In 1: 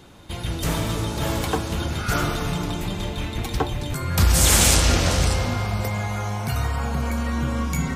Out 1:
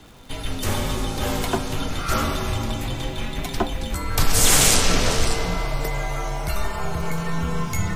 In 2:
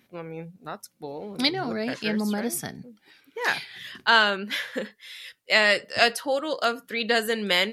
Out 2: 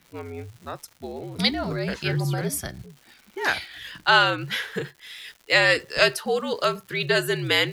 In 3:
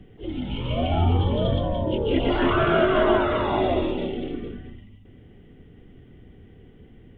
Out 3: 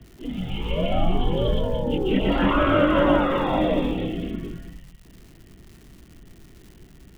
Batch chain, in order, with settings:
surface crackle 270 per second −41 dBFS
frequency shifter −67 Hz
loudness normalisation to −23 LKFS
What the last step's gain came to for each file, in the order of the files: +1.0, +1.0, +1.0 decibels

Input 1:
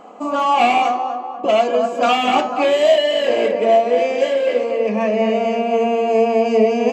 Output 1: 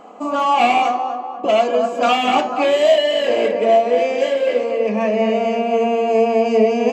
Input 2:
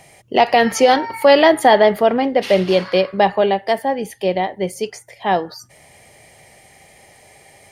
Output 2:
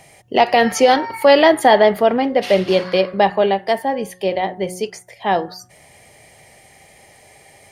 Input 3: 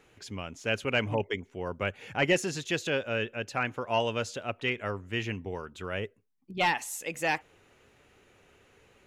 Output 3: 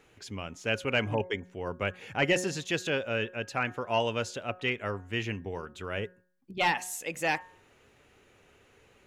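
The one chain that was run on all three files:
hum removal 182 Hz, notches 10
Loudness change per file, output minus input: 0.0, 0.0, 0.0 LU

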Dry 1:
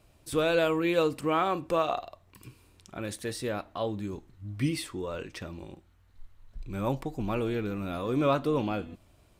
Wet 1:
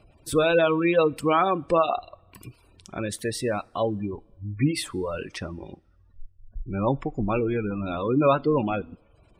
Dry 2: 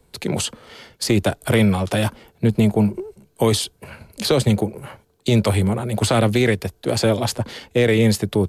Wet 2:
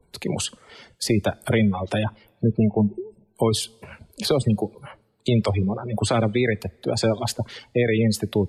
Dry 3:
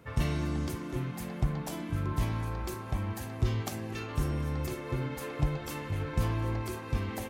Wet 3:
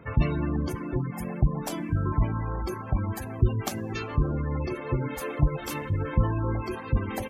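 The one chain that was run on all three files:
gate on every frequency bin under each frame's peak −25 dB strong
reverb reduction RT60 0.59 s
coupled-rooms reverb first 0.23 s, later 1.6 s, from −18 dB, DRR 19.5 dB
normalise the peak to −9 dBFS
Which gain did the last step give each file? +6.5, −2.5, +7.0 decibels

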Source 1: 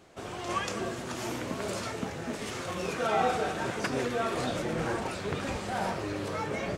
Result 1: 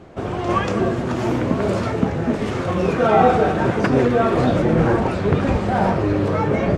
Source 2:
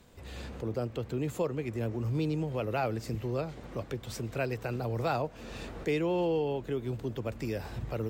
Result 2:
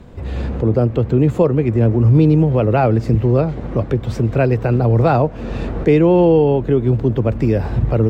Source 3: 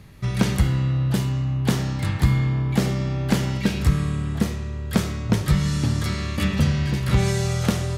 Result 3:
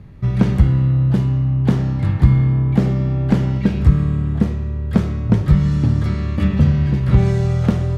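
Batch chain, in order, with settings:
low-pass filter 1,300 Hz 6 dB per octave
low-shelf EQ 320 Hz +6 dB
normalise the peak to −2 dBFS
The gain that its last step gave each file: +12.5, +15.5, +1.5 decibels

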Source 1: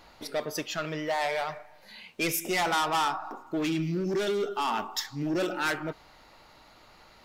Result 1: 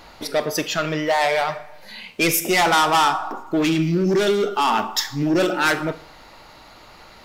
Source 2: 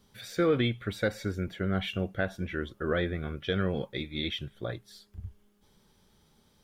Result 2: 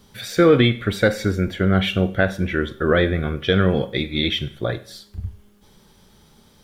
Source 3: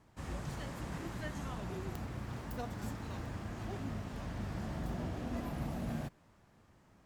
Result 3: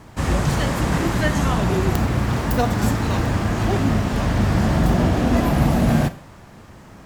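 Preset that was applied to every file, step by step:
four-comb reverb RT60 0.52 s, combs from 32 ms, DRR 14 dB
loudness normalisation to −20 LKFS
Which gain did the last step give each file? +9.5, +11.5, +21.5 decibels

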